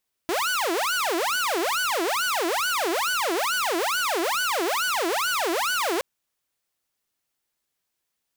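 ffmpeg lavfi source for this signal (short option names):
-f lavfi -i "aevalsrc='0.1*(2*mod((913.5*t-586.5/(2*PI*2.3)*sin(2*PI*2.3*t)),1)-1)':d=5.72:s=44100"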